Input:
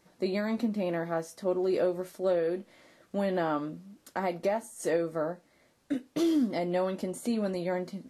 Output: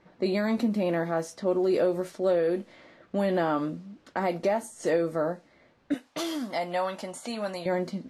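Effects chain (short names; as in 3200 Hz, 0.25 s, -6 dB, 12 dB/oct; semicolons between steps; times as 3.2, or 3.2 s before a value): low-pass opened by the level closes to 2700 Hz, open at -27 dBFS; 5.94–7.66 resonant low shelf 550 Hz -10.5 dB, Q 1.5; in parallel at -1 dB: limiter -26.5 dBFS, peak gain reduction 9 dB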